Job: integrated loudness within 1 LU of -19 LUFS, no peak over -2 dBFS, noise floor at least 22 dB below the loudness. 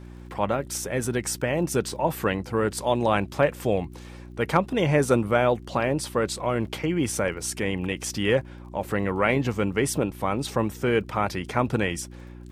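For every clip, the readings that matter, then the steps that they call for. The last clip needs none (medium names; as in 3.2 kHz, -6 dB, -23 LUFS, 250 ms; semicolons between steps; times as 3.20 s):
tick rate 49 per s; hum 60 Hz; highest harmonic 360 Hz; hum level -39 dBFS; loudness -25.5 LUFS; peak level -5.5 dBFS; loudness target -19.0 LUFS
-> de-click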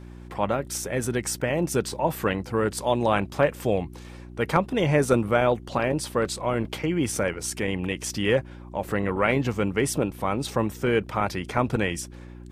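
tick rate 0.32 per s; hum 60 Hz; highest harmonic 180 Hz; hum level -40 dBFS
-> de-hum 60 Hz, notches 3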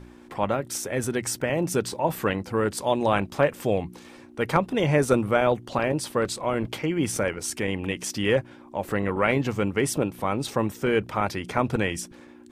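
hum not found; loudness -26.0 LUFS; peak level -6.0 dBFS; loudness target -19.0 LUFS
-> trim +7 dB; peak limiter -2 dBFS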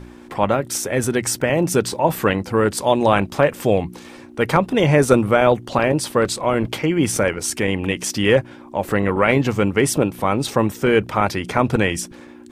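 loudness -19.0 LUFS; peak level -2.0 dBFS; noise floor -41 dBFS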